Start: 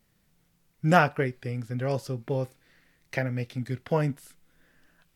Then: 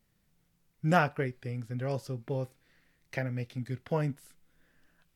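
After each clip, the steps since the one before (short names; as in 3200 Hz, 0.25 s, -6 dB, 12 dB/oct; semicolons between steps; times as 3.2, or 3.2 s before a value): low shelf 150 Hz +3 dB; gain -5.5 dB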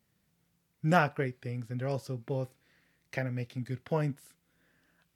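HPF 70 Hz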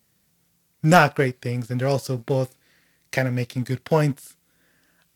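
sample leveller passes 1; tone controls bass -2 dB, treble +7 dB; gain +8 dB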